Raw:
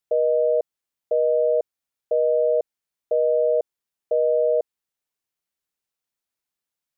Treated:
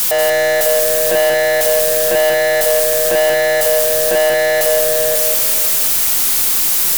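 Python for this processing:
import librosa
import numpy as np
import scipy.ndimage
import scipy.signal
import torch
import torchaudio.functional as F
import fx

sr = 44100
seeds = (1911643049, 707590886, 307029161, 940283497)

p1 = x + 0.5 * 10.0 ** (-29.0 / 20.0) * np.diff(np.sign(x), prepend=np.sign(x[:1]))
p2 = scipy.signal.sosfilt(scipy.signal.butter(4, 570.0, 'highpass', fs=sr, output='sos'), p1)
p3 = fx.echo_feedback(p2, sr, ms=546, feedback_pct=15, wet_db=-8.5)
p4 = fx.fuzz(p3, sr, gain_db=37.0, gate_db=-40.0)
p5 = fx.leveller(p4, sr, passes=3)
p6 = p5 + fx.echo_single(p5, sr, ms=186, db=-5.5, dry=0)
y = p6 * 10.0 ** (-2.0 / 20.0)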